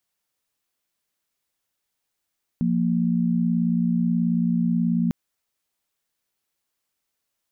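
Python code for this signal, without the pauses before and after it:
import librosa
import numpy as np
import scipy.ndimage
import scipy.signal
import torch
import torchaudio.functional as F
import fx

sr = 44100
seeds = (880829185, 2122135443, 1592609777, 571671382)

y = fx.chord(sr, length_s=2.5, notes=(53, 58), wave='sine', level_db=-21.5)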